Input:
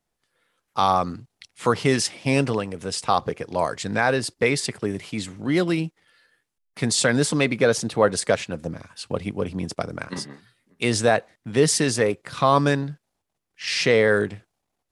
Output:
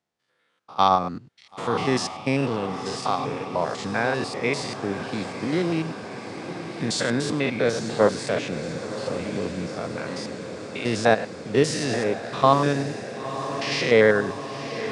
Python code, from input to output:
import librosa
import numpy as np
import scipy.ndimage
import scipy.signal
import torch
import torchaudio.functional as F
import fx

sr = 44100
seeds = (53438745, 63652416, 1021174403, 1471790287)

p1 = fx.spec_steps(x, sr, hold_ms=100)
p2 = scipy.signal.sosfilt(scipy.signal.butter(2, 120.0, 'highpass', fs=sr, output='sos'), p1)
p3 = fx.level_steps(p2, sr, step_db=19)
p4 = p2 + (p3 * librosa.db_to_amplitude(-1.5))
p5 = scipy.signal.sosfilt(scipy.signal.butter(2, 6200.0, 'lowpass', fs=sr, output='sos'), p4)
p6 = fx.echo_diffused(p5, sr, ms=992, feedback_pct=73, wet_db=-10.5)
y = p6 * librosa.db_to_amplitude(-2.0)